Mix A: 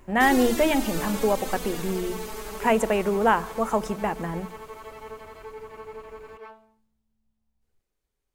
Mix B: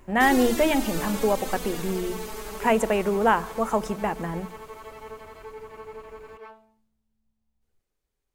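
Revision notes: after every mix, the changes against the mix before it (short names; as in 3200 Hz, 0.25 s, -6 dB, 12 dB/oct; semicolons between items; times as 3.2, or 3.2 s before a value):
second sound: send -7.0 dB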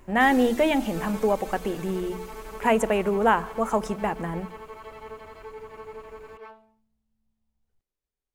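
first sound -9.5 dB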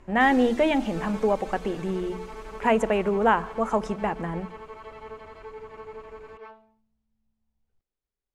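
master: add air absorption 65 m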